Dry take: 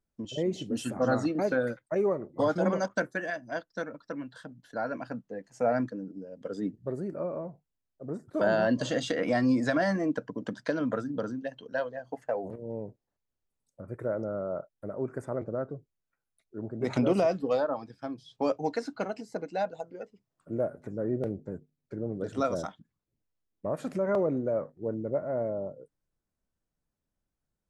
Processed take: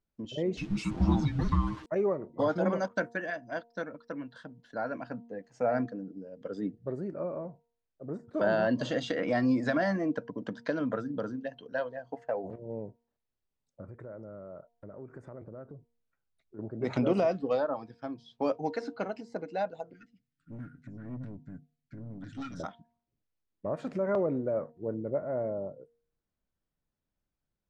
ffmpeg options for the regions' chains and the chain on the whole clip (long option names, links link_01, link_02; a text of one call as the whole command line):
ffmpeg -i in.wav -filter_complex "[0:a]asettb=1/sr,asplit=3[link_01][link_02][link_03];[link_01]atrim=end=0.574[link_04];[link_02]atrim=start=0.57:end=1.86,asetpts=PTS-STARTPTS,afade=type=in:duration=0.004:curve=qsin,afade=type=out:start_time=1.286:duration=0.004:curve=qsin,aeval=exprs='val(0)+0.5*0.00841*sgn(val(0))':channel_layout=same,aecho=1:1:7.4:0.6,atrim=end_sample=56889,afreqshift=-440[link_05];[link_03]atrim=start=1.856[link_06];[link_04][link_05]acrossfade=duration=0.004:curve1=hsin:curve2=qsin[link_07];[link_07][link_06]acrossfade=duration=0.004:curve1=qsin:curve2=hsin,asettb=1/sr,asplit=3[link_08][link_09][link_10];[link_08]atrim=end=13.884[link_11];[link_09]atrim=start=13.88:end=16.59,asetpts=PTS-STARTPTS,afade=type=in:duration=0.004:curve=qsin,afade=type=out:start_time=2.706:duration=0.004:curve=qsin,lowshelf=frequency=130:gain=7.5,acompressor=threshold=-43dB:ratio=3:attack=3.2:release=140:knee=1:detection=peak[link_12];[link_10]atrim=start=16.586[link_13];[link_11][link_12]acrossfade=duration=0.004:curve1=hsin:curve2=qsin[link_14];[link_14][link_13]acrossfade=duration=0.004:curve1=qsin:curve2=hsin,asettb=1/sr,asplit=3[link_15][link_16][link_17];[link_15]atrim=end=19.934[link_18];[link_16]atrim=start=19.93:end=22.6,asetpts=PTS-STARTPTS,afade=type=in:duration=0.004:curve=qsin,afade=type=out:start_time=2.666:duration=0.004:curve=qsin,asuperstop=centerf=650:order=12:qfactor=0.6,aeval=exprs='(tanh(56.2*val(0)+0.25)-tanh(0.25))/56.2':channel_layout=same,aecho=1:1:7.1:0.33,atrim=end_sample=117747[link_19];[link_17]atrim=start=22.596[link_20];[link_18][link_19]acrossfade=duration=0.004:curve1=hsin:curve2=qsin[link_21];[link_21][link_20]acrossfade=duration=0.004:curve1=qsin:curve2=hsin,lowpass=4800,bandreject=frequency=234.3:width_type=h:width=4,bandreject=frequency=468.6:width_type=h:width=4,bandreject=frequency=702.9:width_type=h:width=4,bandreject=frequency=937.2:width_type=h:width=4,volume=-1.5dB" out.wav